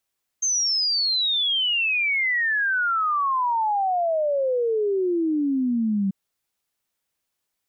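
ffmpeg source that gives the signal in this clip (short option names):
-f lavfi -i "aevalsrc='0.106*clip(min(t,5.69-t)/0.01,0,1)*sin(2*PI*6400*5.69/log(190/6400)*(exp(log(190/6400)*t/5.69)-1))':d=5.69:s=44100"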